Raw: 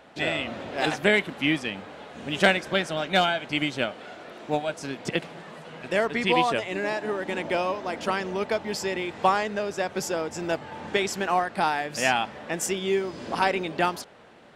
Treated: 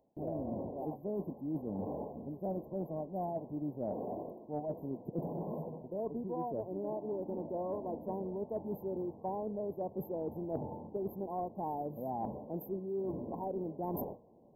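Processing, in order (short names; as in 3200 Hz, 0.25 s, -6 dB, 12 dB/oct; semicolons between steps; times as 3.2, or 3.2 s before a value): FFT band-reject 1100–12000 Hz; gate with hold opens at -37 dBFS; bell 1200 Hz -14.5 dB 1.1 oct; reverse; compressor 12:1, threshold -50 dBFS, peak gain reduction 30.5 dB; reverse; gain +14.5 dB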